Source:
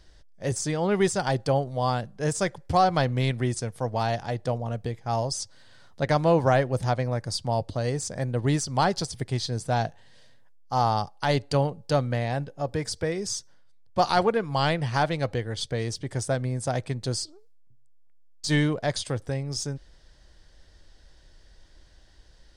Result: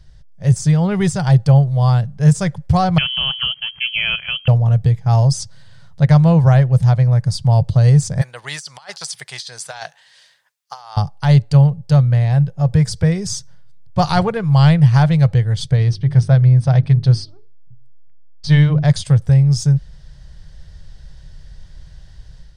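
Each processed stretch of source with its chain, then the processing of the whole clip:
2.98–4.48 s: de-esser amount 90% + frequency inversion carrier 3.2 kHz
8.21–10.97 s: high-pass 1.2 kHz + compressor with a negative ratio -36 dBFS, ratio -0.5
15.76–18.85 s: Savitzky-Golay filter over 15 samples + hum notches 50/100/150/200/250/300/350/400 Hz
whole clip: resonant low shelf 200 Hz +9.5 dB, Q 3; level rider gain up to 6.5 dB

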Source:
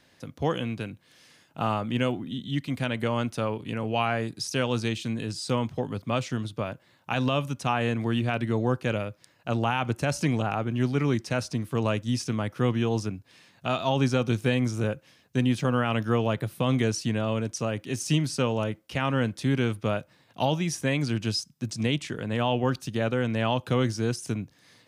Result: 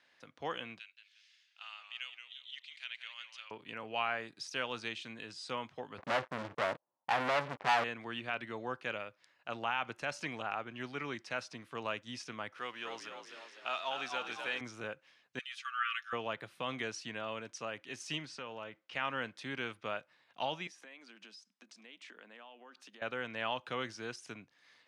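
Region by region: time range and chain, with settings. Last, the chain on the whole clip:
0.79–3.51 s: Butterworth band-pass 4.5 kHz, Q 0.84 + modulated delay 177 ms, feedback 33%, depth 95 cents, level -8.5 dB
5.98–7.84 s: steep low-pass 990 Hz + waveshaping leveller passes 5 + tilt EQ +1.5 dB/octave
12.58–14.61 s: companding laws mixed up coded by mu + high-pass 780 Hz 6 dB/octave + frequency-shifting echo 252 ms, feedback 53%, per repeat +59 Hz, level -6.5 dB
15.39–16.13 s: brick-wall FIR high-pass 1.1 kHz + comb 5.9 ms, depth 57% + three bands expanded up and down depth 70%
18.25–18.93 s: compression 4:1, threshold -27 dBFS + distance through air 56 m
20.67–23.02 s: Chebyshev high-pass 190 Hz, order 6 + compression 8:1, threshold -40 dBFS
whole clip: low-pass 1.9 kHz 12 dB/octave; differentiator; trim +10 dB

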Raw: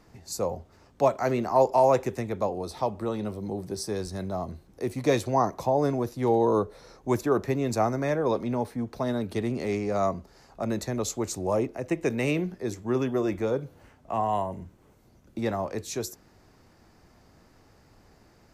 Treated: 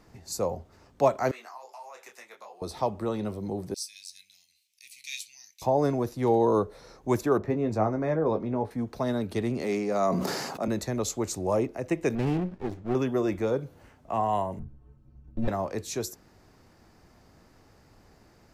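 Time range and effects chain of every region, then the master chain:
1.31–2.62 s: high-pass 1.2 kHz + compression 16:1, threshold -36 dBFS + detune thickener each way 23 cents
3.74–5.62 s: elliptic high-pass 2.4 kHz, stop band 50 dB + doubling 21 ms -13 dB
7.38–8.71 s: low-pass 1.1 kHz 6 dB/octave + doubling 19 ms -8 dB
9.62–10.68 s: high-pass 150 Hz 24 dB/octave + treble shelf 9 kHz +4.5 dB + decay stretcher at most 30 dB/s
12.15–12.95 s: distance through air 170 m + sliding maximum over 33 samples
14.59–15.48 s: comb filter that takes the minimum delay 0.71 ms + tilt EQ -4.5 dB/octave + inharmonic resonator 65 Hz, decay 0.36 s, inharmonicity 0.03
whole clip: none

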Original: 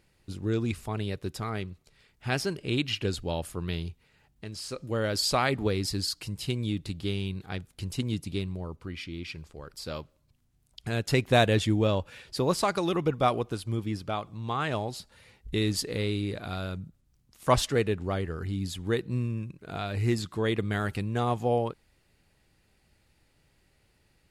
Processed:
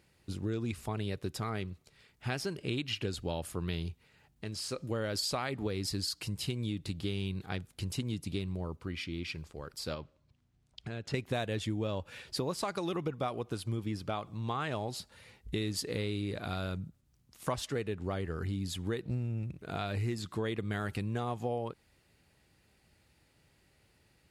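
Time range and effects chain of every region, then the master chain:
9.94–11.14 s: compression 4:1, threshold -36 dBFS + distance through air 91 m
19.05–19.62 s: comb filter that takes the minimum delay 0.33 ms + peaking EQ 66 Hz +12.5 dB 1.4 oct
whole clip: high-pass 54 Hz; compression 6:1, threshold -31 dBFS

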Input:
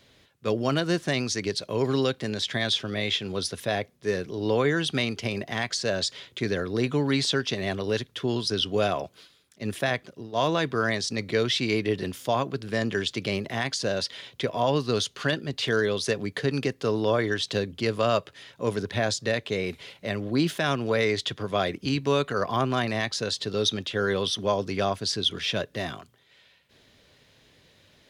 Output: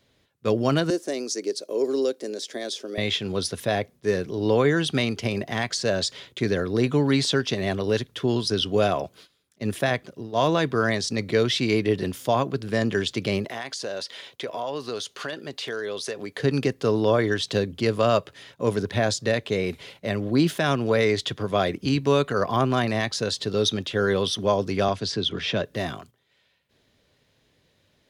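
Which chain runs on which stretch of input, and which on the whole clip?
0.90–2.98 s: high-pass 310 Hz 24 dB/octave + high-order bell 1.7 kHz -11.5 dB 2.7 oct
13.45–16.40 s: tone controls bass -14 dB, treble 0 dB + compression 3:1, threshold -31 dBFS
24.88–25.64 s: high-pass 63 Hz + distance through air 83 m + three bands compressed up and down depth 40%
whole clip: gate -50 dBFS, range -9 dB; peaking EQ 3 kHz -3.5 dB 2.9 oct; trim +4 dB

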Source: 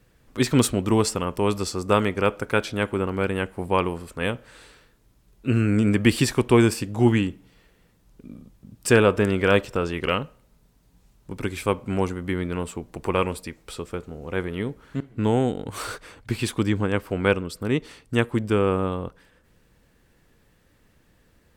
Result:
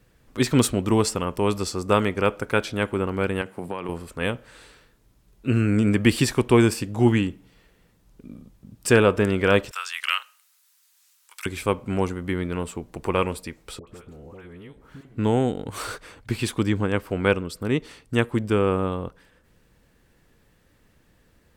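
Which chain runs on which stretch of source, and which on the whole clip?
3.41–3.89 s: high-pass 110 Hz 24 dB/octave + compression 12:1, threshold -25 dBFS
9.71–11.46 s: high-pass 1.2 kHz 24 dB/octave + treble shelf 3.5 kHz +12 dB
13.79–15.05 s: compression 10:1, threshold -38 dBFS + phase dispersion highs, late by 85 ms, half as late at 1.1 kHz
whole clip: none

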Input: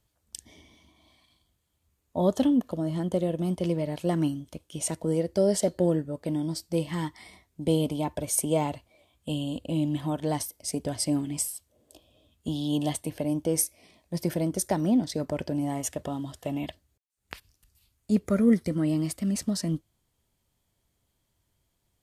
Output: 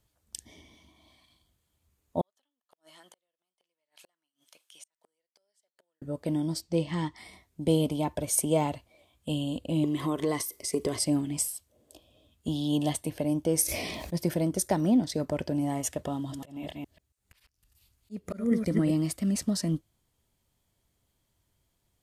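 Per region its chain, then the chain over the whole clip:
2.21–6.02 s: inverted gate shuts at -21 dBFS, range -41 dB + high-pass 1.3 kHz + compression 2.5:1, threshold -53 dBFS
6.61–7.17 s: low-pass 6.5 kHz + peaking EQ 1.5 kHz -4.5 dB 0.32 oct
9.84–10.99 s: treble shelf 2.4 kHz +8.5 dB + compression 4:1, threshold -31 dBFS + small resonant body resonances 400/1100/2000 Hz, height 16 dB, ringing for 30 ms
13.62–14.17 s: peaking EQ 8.8 kHz -4.5 dB 0.62 oct + decay stretcher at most 25 dB/s
16.15–18.91 s: chunks repeated in reverse 139 ms, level -6 dB + slow attack 356 ms
whole clip: none

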